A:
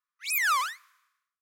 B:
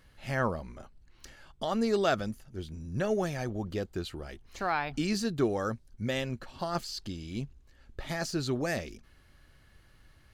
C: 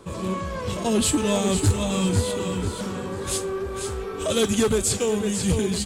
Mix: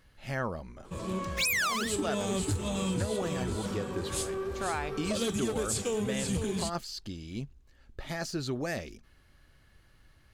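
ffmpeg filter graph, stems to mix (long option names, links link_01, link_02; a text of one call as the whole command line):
ffmpeg -i stem1.wav -i stem2.wav -i stem3.wav -filter_complex "[0:a]equalizer=frequency=4700:width=0.32:gain=10.5,acrusher=bits=5:mix=0:aa=0.5,adelay=1150,volume=2dB[link_01];[1:a]asoftclip=type=hard:threshold=-17dB,volume=-1.5dB[link_02];[2:a]adelay=850,volume=-6dB[link_03];[link_01][link_02][link_03]amix=inputs=3:normalize=0,acompressor=threshold=-27dB:ratio=6" out.wav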